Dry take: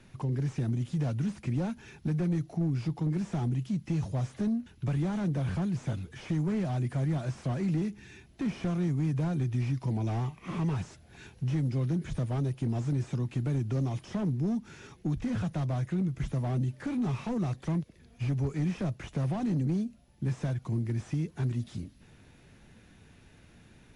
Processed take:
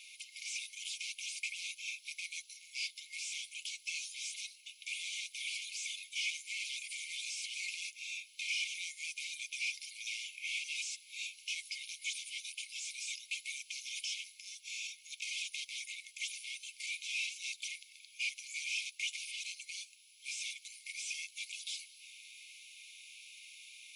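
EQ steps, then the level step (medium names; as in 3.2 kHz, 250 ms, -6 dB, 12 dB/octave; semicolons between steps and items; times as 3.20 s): brick-wall FIR high-pass 2.1 kHz; +13.5 dB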